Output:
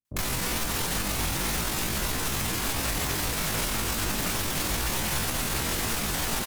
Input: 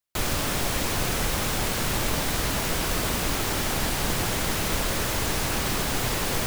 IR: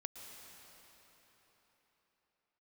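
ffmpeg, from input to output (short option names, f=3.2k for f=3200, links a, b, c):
-filter_complex "[0:a]alimiter=limit=-20.5dB:level=0:latency=1:release=94,asetrate=74167,aresample=44100,atempo=0.594604,acrossover=split=510[a][b];[b]adelay=50[c];[a][c]amix=inputs=2:normalize=0,asplit=2[d][e];[1:a]atrim=start_sample=2205,asetrate=28224,aresample=44100,highshelf=f=4.9k:g=9[f];[e][f]afir=irnorm=-1:irlink=0,volume=-7.5dB[g];[d][g]amix=inputs=2:normalize=0"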